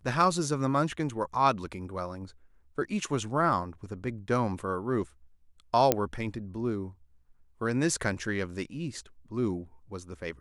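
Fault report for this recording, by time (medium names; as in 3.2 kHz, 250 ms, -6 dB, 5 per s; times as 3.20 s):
5.92 s: pop -6 dBFS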